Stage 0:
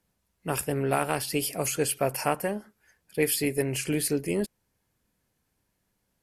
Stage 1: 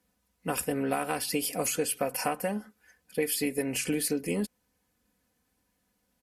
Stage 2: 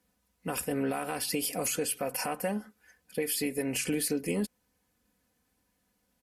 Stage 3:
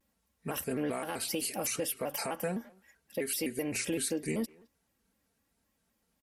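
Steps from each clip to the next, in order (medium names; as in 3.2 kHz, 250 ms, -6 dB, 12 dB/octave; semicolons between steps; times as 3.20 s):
high-pass 46 Hz; comb 4 ms, depth 64%; compression, threshold -25 dBFS, peak gain reduction 8.5 dB
peak limiter -20 dBFS, peak gain reduction 7.5 dB
speakerphone echo 210 ms, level -22 dB; vibrato with a chosen wave square 3.9 Hz, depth 160 cents; trim -2.5 dB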